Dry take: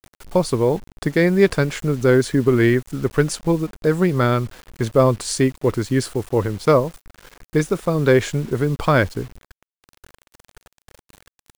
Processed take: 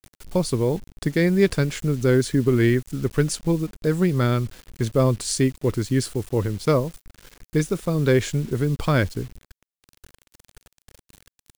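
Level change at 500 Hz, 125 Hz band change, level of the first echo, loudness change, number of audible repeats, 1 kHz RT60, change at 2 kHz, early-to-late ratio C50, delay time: −5.0 dB, −1.0 dB, no echo audible, −3.0 dB, no echo audible, no reverb audible, −5.0 dB, no reverb audible, no echo audible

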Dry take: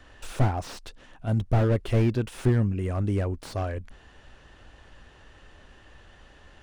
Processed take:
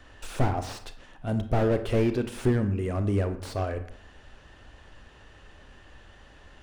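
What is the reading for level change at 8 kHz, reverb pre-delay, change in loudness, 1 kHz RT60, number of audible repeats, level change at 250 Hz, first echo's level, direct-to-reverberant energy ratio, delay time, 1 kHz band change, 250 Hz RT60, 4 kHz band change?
0.0 dB, 29 ms, −1.5 dB, 0.70 s, no echo audible, +0.5 dB, no echo audible, 9.0 dB, no echo audible, +1.0 dB, 0.65 s, +0.5 dB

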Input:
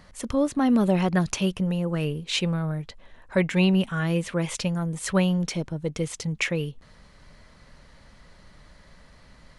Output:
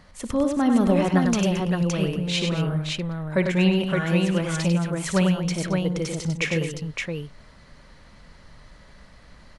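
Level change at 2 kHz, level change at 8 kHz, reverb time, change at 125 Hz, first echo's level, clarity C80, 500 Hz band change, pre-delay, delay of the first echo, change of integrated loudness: +2.5 dB, +1.0 dB, no reverb audible, +2.5 dB, −14.0 dB, no reverb audible, +2.5 dB, no reverb audible, 58 ms, +2.0 dB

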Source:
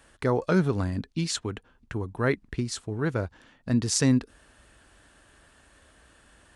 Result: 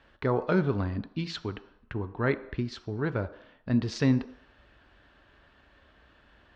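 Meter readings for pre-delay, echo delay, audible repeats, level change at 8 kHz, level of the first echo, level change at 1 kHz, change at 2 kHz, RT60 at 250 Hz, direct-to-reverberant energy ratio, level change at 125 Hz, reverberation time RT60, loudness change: 3 ms, no echo audible, no echo audible, −19.5 dB, no echo audible, −1.0 dB, −2.0 dB, 0.55 s, 10.5 dB, −2.0 dB, 0.75 s, −2.5 dB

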